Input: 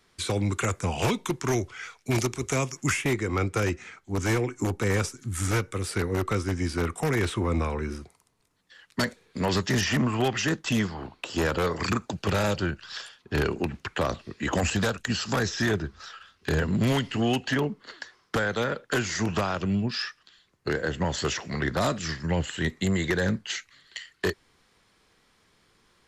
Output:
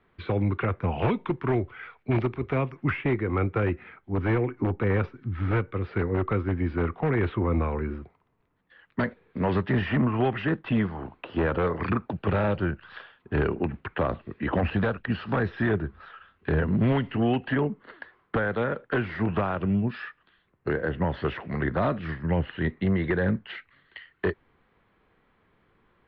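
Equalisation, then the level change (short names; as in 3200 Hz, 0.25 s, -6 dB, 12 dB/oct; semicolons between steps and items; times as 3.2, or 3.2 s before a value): Bessel low-pass 2000 Hz, order 8; air absorption 150 m; +1.5 dB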